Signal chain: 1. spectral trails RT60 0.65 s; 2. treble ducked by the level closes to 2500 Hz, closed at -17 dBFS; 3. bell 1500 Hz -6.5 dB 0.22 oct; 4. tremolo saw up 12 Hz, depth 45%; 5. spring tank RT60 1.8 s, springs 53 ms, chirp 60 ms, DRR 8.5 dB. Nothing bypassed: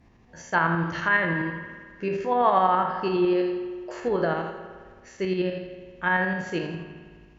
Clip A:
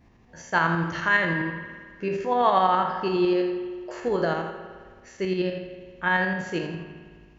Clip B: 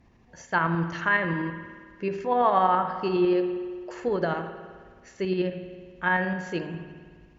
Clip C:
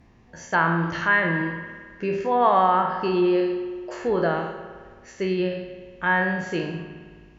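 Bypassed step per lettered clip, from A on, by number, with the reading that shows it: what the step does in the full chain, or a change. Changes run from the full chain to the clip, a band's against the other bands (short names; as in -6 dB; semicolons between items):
2, 4 kHz band +3.5 dB; 1, momentary loudness spread change +2 LU; 4, loudness change +2.0 LU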